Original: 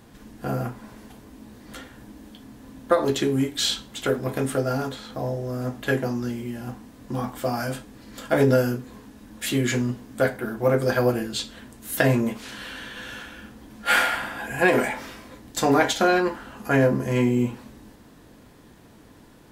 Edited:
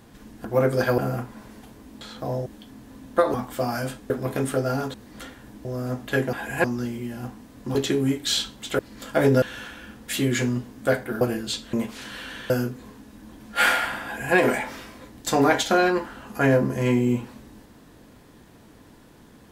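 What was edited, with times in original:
0:01.48–0:02.19: swap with 0:04.95–0:05.40
0:03.07–0:04.11: swap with 0:07.19–0:07.95
0:08.58–0:09.40: swap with 0:12.97–0:13.62
0:10.54–0:11.07: move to 0:00.45
0:11.59–0:12.20: remove
0:14.34–0:14.65: duplicate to 0:06.08

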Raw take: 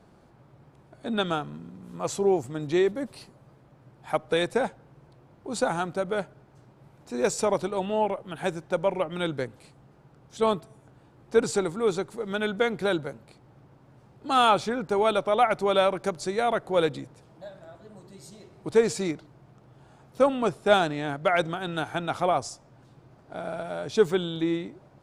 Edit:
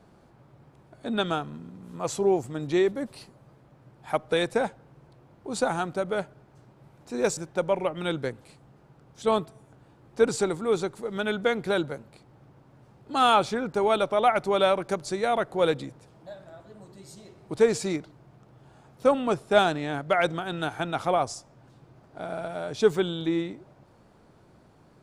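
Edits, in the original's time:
0:07.37–0:08.52: remove

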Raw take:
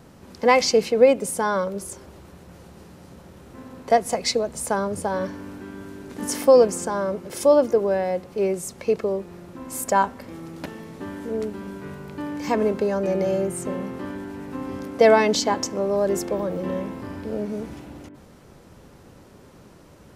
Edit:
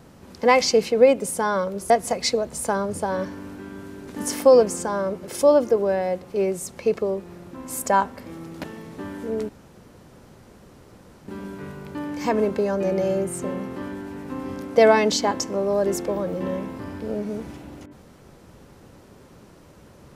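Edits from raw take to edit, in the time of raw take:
0:01.90–0:03.92: remove
0:11.51: splice in room tone 1.79 s

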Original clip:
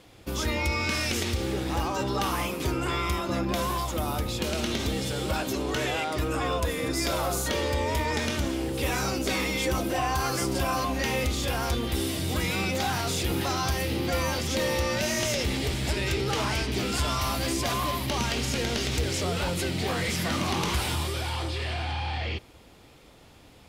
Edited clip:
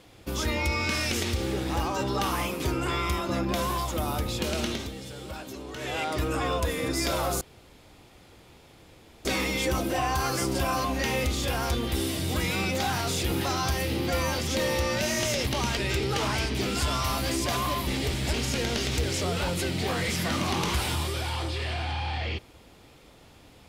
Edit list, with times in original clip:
0:04.64–0:06.04: duck −10 dB, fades 0.27 s
0:07.41–0:09.25: fill with room tone
0:15.47–0:15.94: swap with 0:18.04–0:18.34

